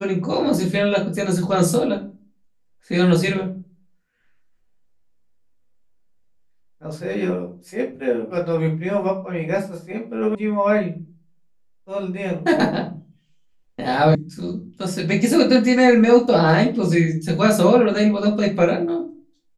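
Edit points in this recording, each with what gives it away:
10.35 sound cut off
14.15 sound cut off

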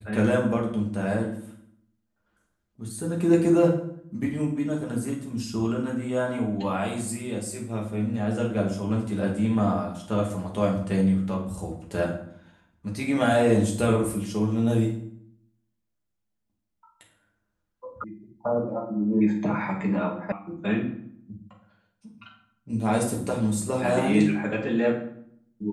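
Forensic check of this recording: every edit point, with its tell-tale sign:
18.04 sound cut off
20.32 sound cut off

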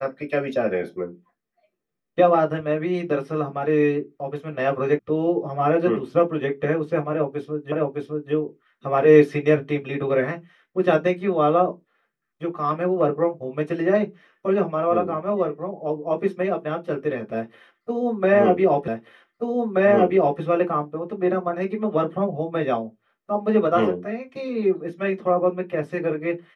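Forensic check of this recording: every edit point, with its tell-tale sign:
4.99 sound cut off
7.72 repeat of the last 0.61 s
18.88 repeat of the last 1.53 s

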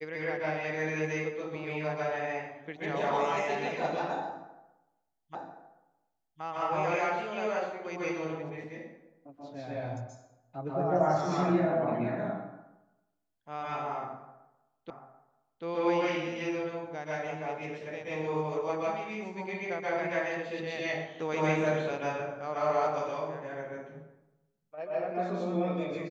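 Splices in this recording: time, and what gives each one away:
5.35 repeat of the last 1.07 s
14.9 repeat of the last 0.74 s

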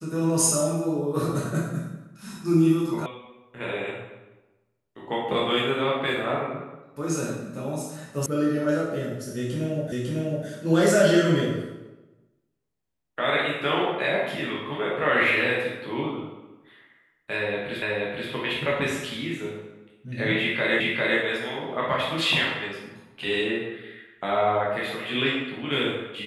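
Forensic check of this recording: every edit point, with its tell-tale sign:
3.06 sound cut off
8.26 sound cut off
9.92 repeat of the last 0.55 s
17.82 repeat of the last 0.48 s
20.8 repeat of the last 0.4 s

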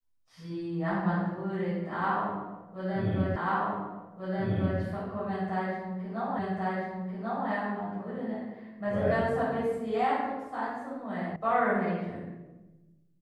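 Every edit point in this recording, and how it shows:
3.36 repeat of the last 1.44 s
6.39 repeat of the last 1.09 s
11.36 sound cut off

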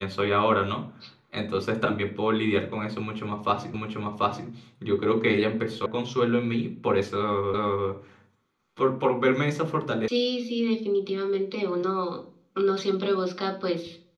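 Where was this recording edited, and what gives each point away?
3.74 repeat of the last 0.74 s
5.86 sound cut off
7.54 repeat of the last 0.35 s
10.08 sound cut off

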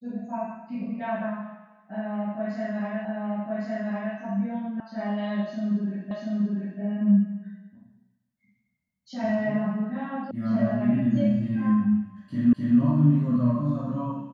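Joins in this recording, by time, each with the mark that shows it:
3.05 repeat of the last 1.11 s
4.8 sound cut off
6.11 repeat of the last 0.69 s
10.31 sound cut off
12.53 repeat of the last 0.26 s

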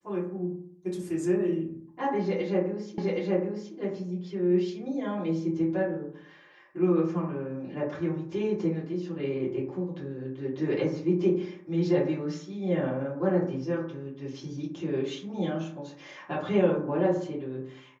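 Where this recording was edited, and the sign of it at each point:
2.98 repeat of the last 0.77 s

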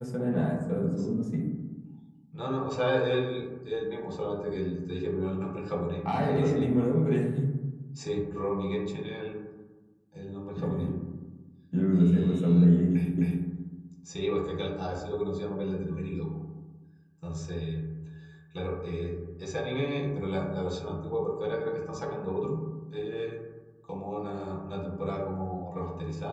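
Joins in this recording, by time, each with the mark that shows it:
13.18 repeat of the last 0.26 s

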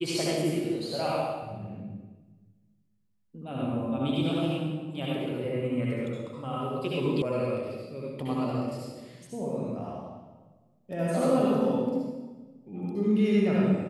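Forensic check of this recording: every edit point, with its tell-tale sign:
7.22 sound cut off

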